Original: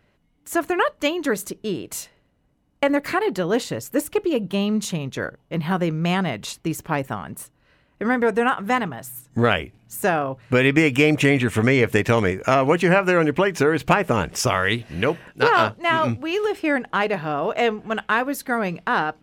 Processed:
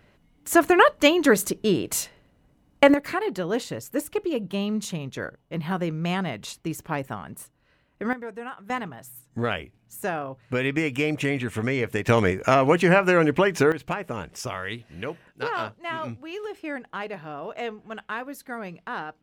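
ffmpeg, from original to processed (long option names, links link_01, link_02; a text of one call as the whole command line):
ffmpeg -i in.wav -af "asetnsamples=nb_out_samples=441:pad=0,asendcmd='2.94 volume volume -5dB;8.13 volume volume -16.5dB;8.7 volume volume -8dB;12.07 volume volume -1dB;13.72 volume volume -11.5dB',volume=4.5dB" out.wav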